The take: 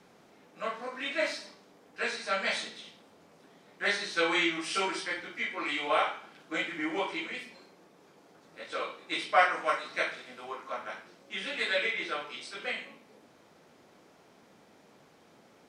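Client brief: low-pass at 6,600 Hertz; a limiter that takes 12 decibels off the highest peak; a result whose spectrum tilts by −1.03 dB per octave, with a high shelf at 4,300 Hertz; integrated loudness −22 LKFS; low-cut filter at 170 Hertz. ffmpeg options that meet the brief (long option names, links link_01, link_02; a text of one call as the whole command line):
ffmpeg -i in.wav -af "highpass=170,lowpass=6600,highshelf=frequency=4300:gain=9,volume=10.5dB,alimiter=limit=-10dB:level=0:latency=1" out.wav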